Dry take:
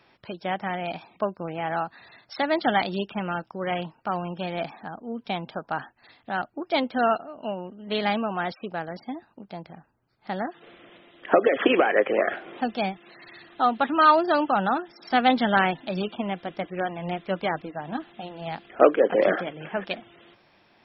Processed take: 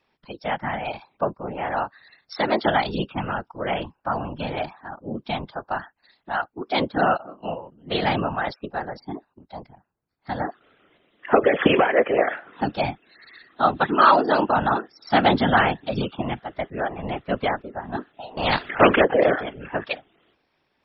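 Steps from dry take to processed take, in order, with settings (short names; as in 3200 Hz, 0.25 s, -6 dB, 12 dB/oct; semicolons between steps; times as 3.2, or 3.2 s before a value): spectral noise reduction 13 dB; whisperiser; 18.37–19.05 spectral compressor 2:1; gain +2.5 dB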